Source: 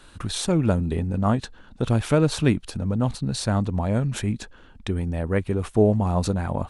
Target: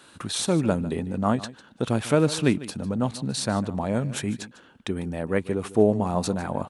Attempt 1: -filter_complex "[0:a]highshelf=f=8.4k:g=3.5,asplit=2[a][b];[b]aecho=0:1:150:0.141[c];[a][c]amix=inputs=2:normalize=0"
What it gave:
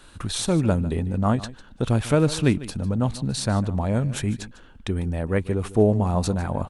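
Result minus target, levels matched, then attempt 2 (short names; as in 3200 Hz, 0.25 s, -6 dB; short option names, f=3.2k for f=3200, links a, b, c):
125 Hz band +4.0 dB
-filter_complex "[0:a]highpass=160,highshelf=f=8.4k:g=3.5,asplit=2[a][b];[b]aecho=0:1:150:0.141[c];[a][c]amix=inputs=2:normalize=0"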